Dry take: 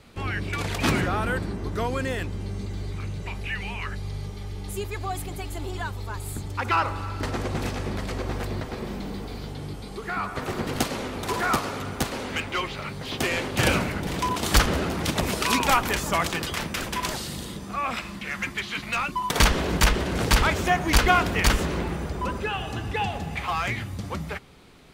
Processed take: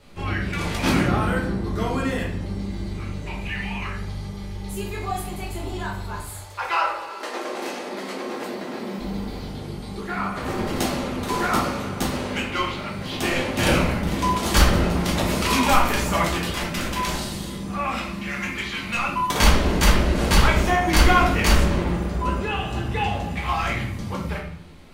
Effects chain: 6.20–8.98 s: high-pass 590 Hz -> 180 Hz 24 dB/octave; simulated room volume 110 m³, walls mixed, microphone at 1.3 m; trim -3 dB

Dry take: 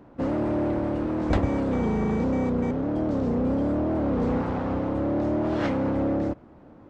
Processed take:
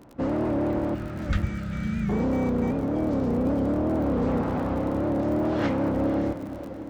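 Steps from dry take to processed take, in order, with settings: crackle 52 per s -37 dBFS; time-frequency box 0.95–2.09 s, 230–1200 Hz -25 dB; on a send: echo that smears into a reverb 535 ms, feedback 41%, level -11.5 dB; on the sum: warped record 78 rpm, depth 100 cents

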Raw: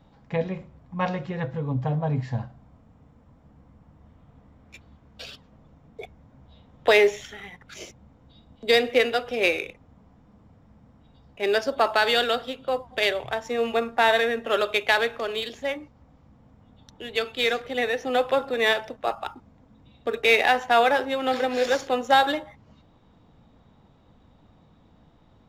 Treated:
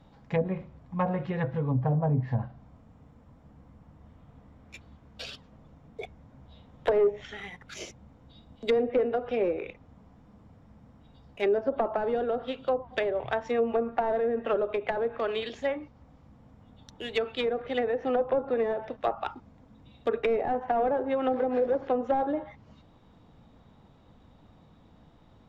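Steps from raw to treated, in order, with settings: overload inside the chain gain 17.5 dB; low-pass that closes with the level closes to 600 Hz, closed at -20.5 dBFS

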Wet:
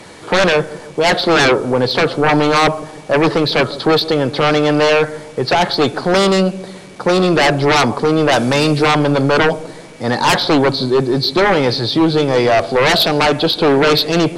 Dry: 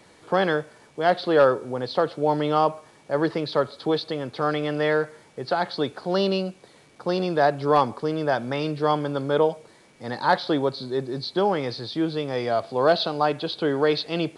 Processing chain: 8.31–8.85 s: treble shelf 3.3 kHz -> 4.9 kHz +9.5 dB; sine folder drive 12 dB, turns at -8 dBFS; feedback echo behind a low-pass 151 ms, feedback 48%, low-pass 550 Hz, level -14 dB

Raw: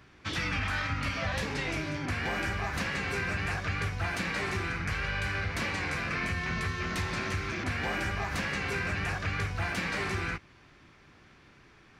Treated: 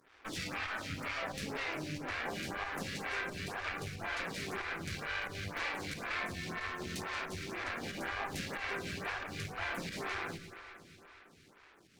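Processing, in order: high-pass 85 Hz; peaking EQ 120 Hz -4.5 dB 1.2 oct; in parallel at -0.5 dB: compression, threshold -48 dBFS, peak gain reduction 17.5 dB; on the sum: crossover distortion -54 dBFS; volume shaper 91 bpm, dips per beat 1, -10 dB, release 142 ms; one-sided clip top -43.5 dBFS; on a send: echo whose repeats swap between lows and highs 115 ms, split 1.3 kHz, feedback 80%, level -10 dB; on the sum: lamp-driven phase shifter 2 Hz

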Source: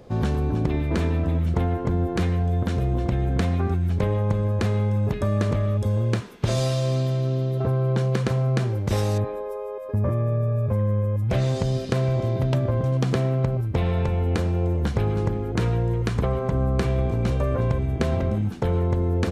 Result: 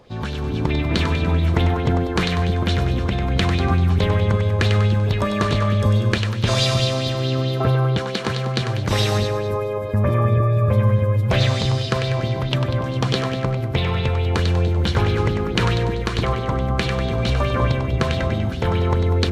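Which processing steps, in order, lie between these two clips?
peaking EQ 3.6 kHz +7 dB 1.7 oct; level rider; on a send: two-band feedback delay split 420 Hz, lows 312 ms, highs 97 ms, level -5.5 dB; on the sum: sweeping bell 4.6 Hz 940–4100 Hz +10 dB; trim -5 dB

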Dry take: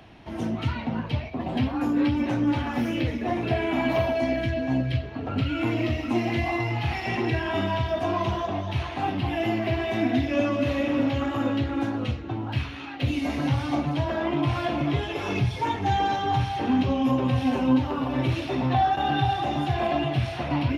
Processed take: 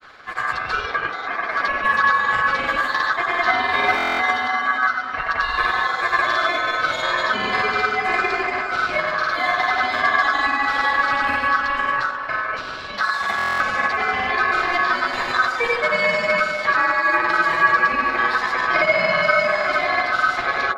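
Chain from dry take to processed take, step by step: granulator, pitch spread up and down by 0 st; ring modulator 1.4 kHz; on a send: feedback echo behind a band-pass 81 ms, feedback 75%, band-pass 540 Hz, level -7 dB; on the sum: buffer glitch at 3.96/13.37 s, samples 1024, times 9; trim +9 dB

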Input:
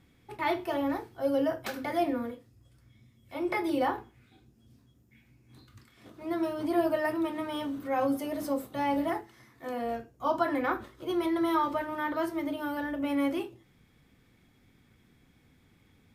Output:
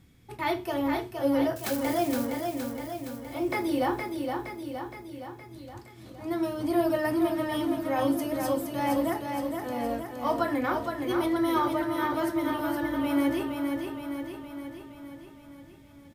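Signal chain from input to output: 1.56–2.25 s: zero-crossing glitches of -34.5 dBFS; tone controls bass +6 dB, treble +6 dB; feedback delay 467 ms, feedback 59%, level -5 dB

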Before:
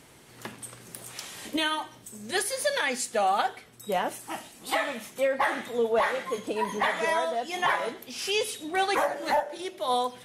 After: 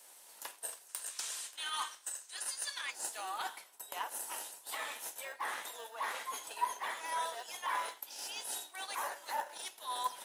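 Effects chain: differentiator; in parallel at -4 dB: sample-and-hold 39×; on the sum: time-frequency box 0.89–2.91 s, 1–9.8 kHz +9 dB; reverse; compression 12:1, threshold -43 dBFS, peak gain reduction 23 dB; reverse; high-pass 640 Hz 12 dB/octave; peaking EQ 990 Hz +13.5 dB 0.59 oct; three bands expanded up and down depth 40%; trim +5 dB

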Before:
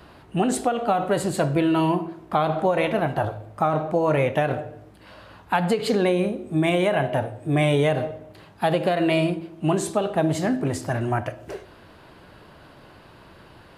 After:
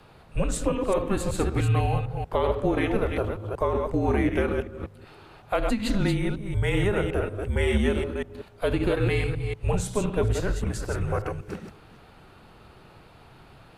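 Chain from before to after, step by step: chunks repeated in reverse 187 ms, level -5 dB; frequency shift -210 Hz; trim -3.5 dB

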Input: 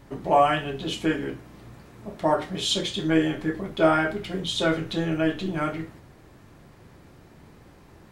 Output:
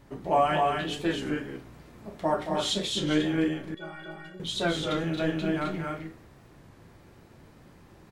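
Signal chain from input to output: 3.48–4.40 s: inharmonic resonator 170 Hz, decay 0.36 s, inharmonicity 0.03; on a send: loudspeakers at several distances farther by 77 m -8 dB, 90 m -4 dB; on the sum: warped record 33 1/3 rpm, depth 100 cents; trim -4.5 dB

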